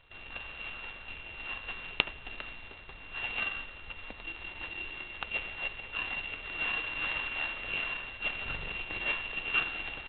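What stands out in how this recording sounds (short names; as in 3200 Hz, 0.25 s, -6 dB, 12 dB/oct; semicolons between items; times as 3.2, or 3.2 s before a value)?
a buzz of ramps at a fixed pitch in blocks of 16 samples; G.726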